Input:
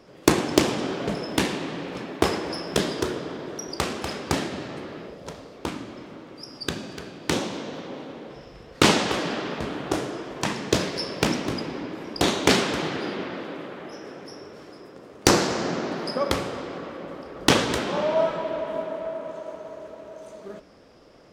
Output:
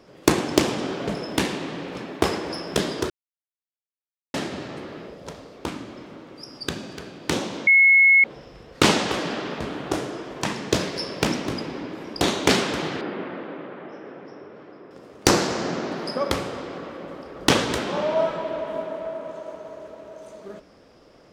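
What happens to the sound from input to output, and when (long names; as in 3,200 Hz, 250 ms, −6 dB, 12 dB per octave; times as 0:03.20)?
0:03.10–0:04.34: silence
0:07.67–0:08.24: beep over 2,180 Hz −11 dBFS
0:13.01–0:14.91: band-pass filter 120–2,300 Hz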